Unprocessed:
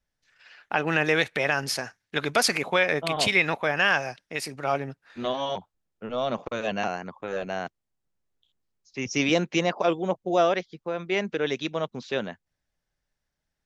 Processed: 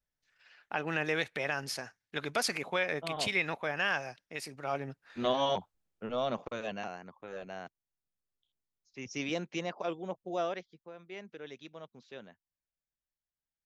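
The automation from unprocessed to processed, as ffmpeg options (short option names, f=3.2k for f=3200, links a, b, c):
-af "afade=t=in:st=4.7:d=0.73:silence=0.354813,afade=t=out:st=5.43:d=1.42:silence=0.251189,afade=t=out:st=10.46:d=0.49:silence=0.446684"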